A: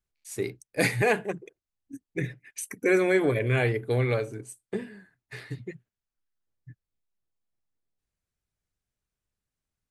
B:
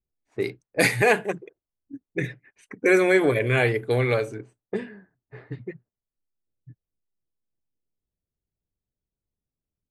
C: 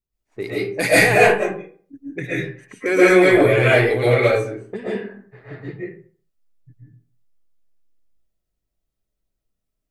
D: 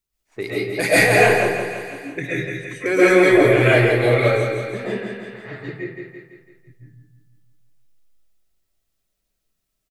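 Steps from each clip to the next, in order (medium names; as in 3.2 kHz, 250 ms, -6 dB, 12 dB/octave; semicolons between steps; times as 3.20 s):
level-controlled noise filter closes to 420 Hz, open at -24.5 dBFS; bass shelf 260 Hz -6 dB; trim +5.5 dB
in parallel at -5 dB: hard clipper -14 dBFS, distortion -16 dB; on the sum: reverberation RT60 0.45 s, pre-delay 90 ms, DRR -9.5 dB; trim -6 dB
on a send: feedback delay 167 ms, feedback 50%, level -6.5 dB; on the sum: tape noise reduction on one side only encoder only; trim -1 dB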